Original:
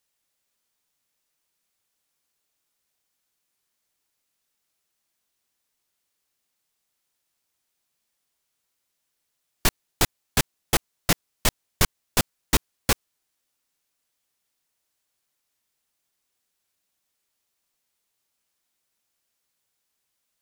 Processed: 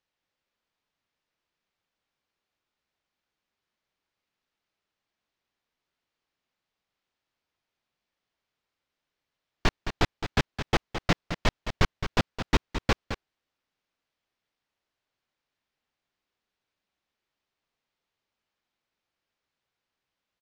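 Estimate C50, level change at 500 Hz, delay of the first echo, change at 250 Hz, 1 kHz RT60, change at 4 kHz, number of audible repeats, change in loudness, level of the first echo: no reverb, 0.0 dB, 215 ms, 0.0 dB, no reverb, -5.0 dB, 1, -4.0 dB, -9.5 dB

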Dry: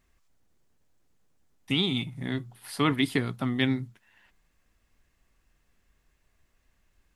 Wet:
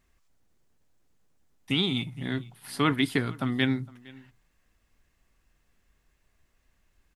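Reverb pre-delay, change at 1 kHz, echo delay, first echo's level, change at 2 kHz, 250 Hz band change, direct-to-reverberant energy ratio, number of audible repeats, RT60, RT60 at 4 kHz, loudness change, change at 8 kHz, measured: no reverb, +1.0 dB, 461 ms, -23.0 dB, +1.0 dB, 0.0 dB, no reverb, 1, no reverb, no reverb, 0.0 dB, 0.0 dB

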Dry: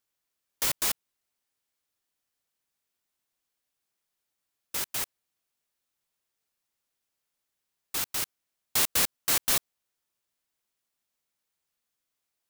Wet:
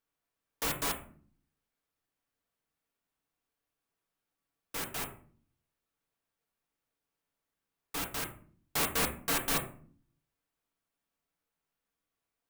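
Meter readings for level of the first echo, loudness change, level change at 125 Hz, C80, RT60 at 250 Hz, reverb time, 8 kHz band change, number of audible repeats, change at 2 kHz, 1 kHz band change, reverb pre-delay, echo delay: no echo, -6.0 dB, +3.5 dB, 15.0 dB, 0.85 s, 0.50 s, -7.5 dB, no echo, -1.5 dB, +1.0 dB, 4 ms, no echo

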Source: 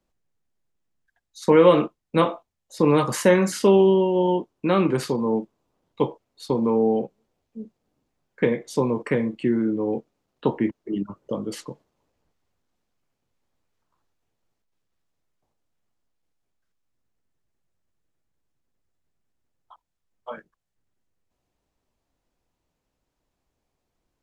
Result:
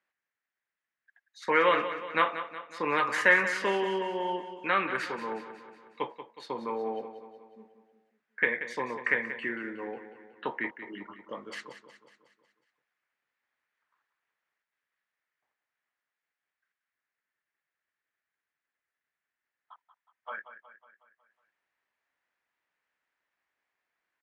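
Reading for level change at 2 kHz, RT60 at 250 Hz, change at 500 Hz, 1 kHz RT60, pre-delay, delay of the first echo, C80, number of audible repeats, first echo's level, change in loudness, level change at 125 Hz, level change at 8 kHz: +6.5 dB, no reverb, -12.0 dB, no reverb, no reverb, 183 ms, no reverb, 5, -11.5 dB, -7.5 dB, -21.5 dB, -13.0 dB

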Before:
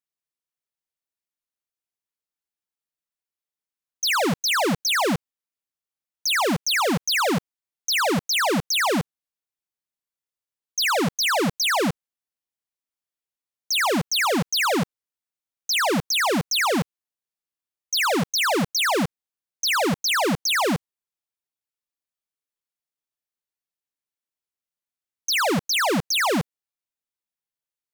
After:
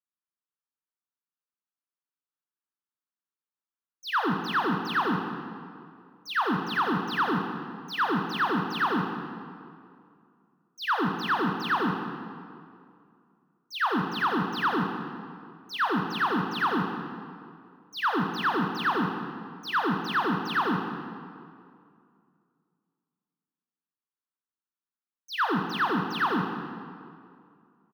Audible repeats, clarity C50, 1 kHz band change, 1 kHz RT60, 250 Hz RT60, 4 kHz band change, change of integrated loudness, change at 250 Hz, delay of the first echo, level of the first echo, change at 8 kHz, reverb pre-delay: 1, 5.5 dB, -1.0 dB, 2.3 s, 2.5 s, -12.5 dB, -6.5 dB, -3.0 dB, 192 ms, -14.5 dB, under -25 dB, 17 ms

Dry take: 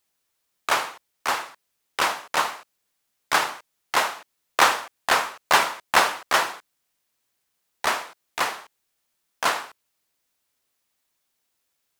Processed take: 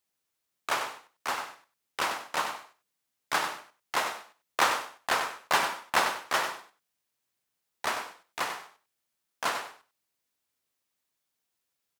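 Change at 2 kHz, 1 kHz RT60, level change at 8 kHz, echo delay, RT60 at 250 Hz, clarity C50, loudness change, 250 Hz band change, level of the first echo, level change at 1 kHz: -7.0 dB, no reverb, -7.0 dB, 96 ms, no reverb, no reverb, -7.0 dB, -5.5 dB, -8.5 dB, -6.5 dB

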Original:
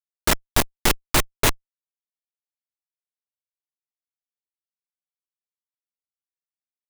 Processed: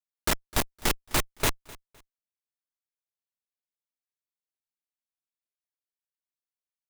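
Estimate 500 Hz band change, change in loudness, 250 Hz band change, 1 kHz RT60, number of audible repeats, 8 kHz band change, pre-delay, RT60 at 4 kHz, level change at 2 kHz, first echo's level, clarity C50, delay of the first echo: -6.5 dB, -6.5 dB, -6.5 dB, no reverb, 2, -6.5 dB, no reverb, no reverb, -6.5 dB, -21.5 dB, no reverb, 256 ms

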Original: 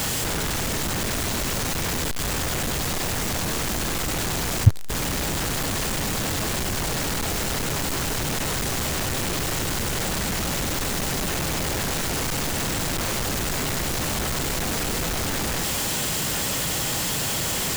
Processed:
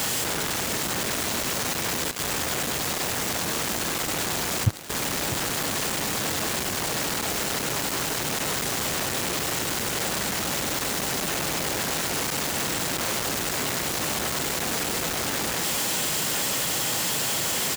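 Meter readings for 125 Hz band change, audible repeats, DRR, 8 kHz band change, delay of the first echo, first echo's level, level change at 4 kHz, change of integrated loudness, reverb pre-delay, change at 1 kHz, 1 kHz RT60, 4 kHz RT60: -7.5 dB, 1, no reverb, 0.0 dB, 649 ms, -14.5 dB, 0.0 dB, -0.5 dB, no reverb, 0.0 dB, no reverb, no reverb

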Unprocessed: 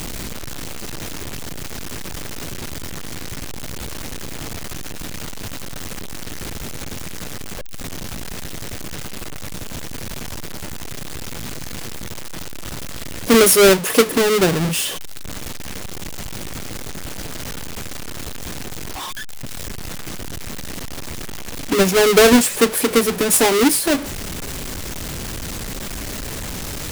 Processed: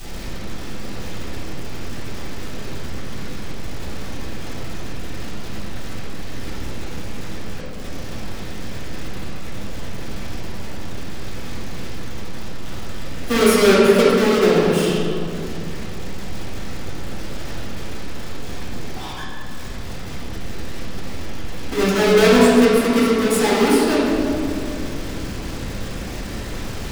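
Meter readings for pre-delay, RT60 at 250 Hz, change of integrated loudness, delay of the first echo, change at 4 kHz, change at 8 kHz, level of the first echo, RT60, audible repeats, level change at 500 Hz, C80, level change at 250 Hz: 4 ms, 3.9 s, +2.0 dB, no echo, -3.0 dB, -9.0 dB, no echo, 2.7 s, no echo, +0.5 dB, -1.0 dB, +2.0 dB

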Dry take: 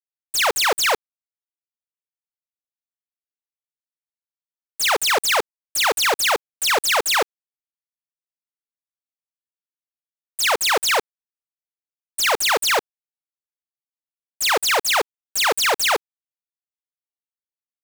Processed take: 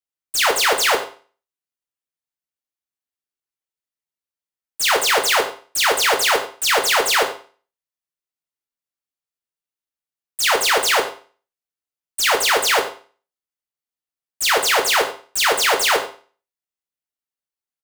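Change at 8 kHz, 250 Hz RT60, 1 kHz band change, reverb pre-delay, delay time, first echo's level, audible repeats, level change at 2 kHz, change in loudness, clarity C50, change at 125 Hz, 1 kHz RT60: +1.5 dB, 0.40 s, +2.0 dB, 8 ms, 95 ms, -16.5 dB, 1, +2.5 dB, +2.0 dB, 10.0 dB, no reading, 0.40 s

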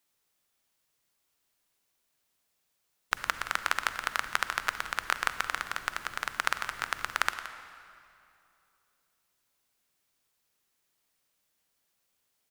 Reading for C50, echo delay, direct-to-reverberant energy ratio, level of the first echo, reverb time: 9.5 dB, 172 ms, 9.0 dB, -14.0 dB, 2.7 s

